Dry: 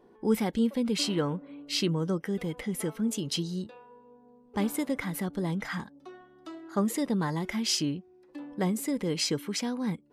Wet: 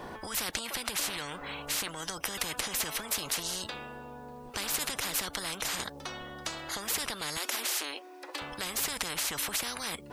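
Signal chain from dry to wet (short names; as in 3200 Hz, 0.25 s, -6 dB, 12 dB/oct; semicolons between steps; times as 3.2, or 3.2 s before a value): compressor 2.5:1, threshold -31 dBFS, peak gain reduction 8 dB; 7.37–8.42 brick-wall FIR high-pass 270 Hz; maximiser +26 dB; spectral compressor 10:1; gain -8.5 dB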